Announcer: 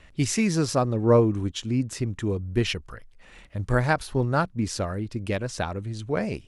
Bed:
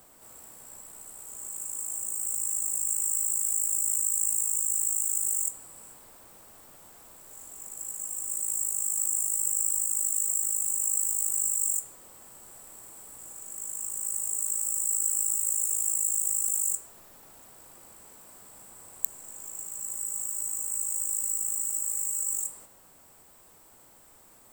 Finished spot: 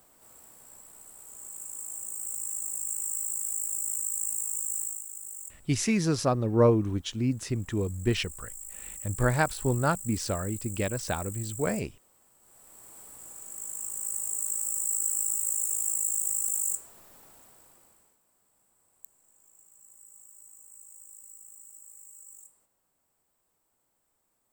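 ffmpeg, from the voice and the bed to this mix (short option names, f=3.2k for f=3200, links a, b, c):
-filter_complex "[0:a]adelay=5500,volume=-2.5dB[a];[1:a]volume=7.5dB,afade=t=out:st=4.79:d=0.25:silence=0.354813,afade=t=in:st=12.39:d=0.6:silence=0.251189,afade=t=out:st=17.19:d=1:silence=0.11885[b];[a][b]amix=inputs=2:normalize=0"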